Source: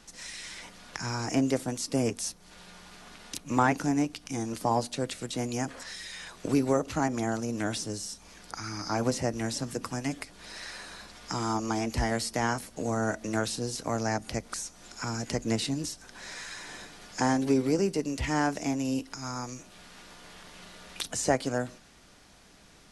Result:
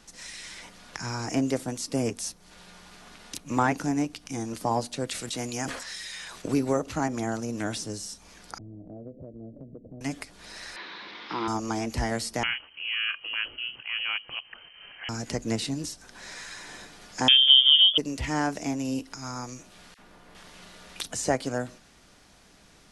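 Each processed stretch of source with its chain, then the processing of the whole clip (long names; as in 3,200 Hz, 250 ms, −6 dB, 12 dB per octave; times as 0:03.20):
0:05.07–0:06.42: tilt shelving filter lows −3.5 dB, about 880 Hz + level that may fall only so fast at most 56 dB per second
0:08.58–0:10.01: Butterworth low-pass 660 Hz 72 dB per octave + downward compressor 4 to 1, threshold −41 dBFS
0:10.76–0:11.48: linear delta modulator 32 kbit/s, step −37.5 dBFS + loudspeaker in its box 230–4,200 Hz, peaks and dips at 340 Hz +6 dB, 660 Hz −6 dB, 1,000 Hz +6 dB, 2,100 Hz +7 dB, 3,600 Hz +6 dB
0:12.43–0:15.09: transient designer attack −7 dB, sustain −2 dB + voice inversion scrambler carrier 3,100 Hz + one half of a high-frequency compander encoder only
0:17.28–0:17.98: spectral tilt −4.5 dB per octave + voice inversion scrambler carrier 3,400 Hz + multiband upward and downward compressor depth 40%
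0:19.94–0:20.35: parametric band 6,200 Hz −11 dB 2.9 octaves + all-pass dispersion lows, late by 46 ms, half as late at 1,500 Hz
whole clip: no processing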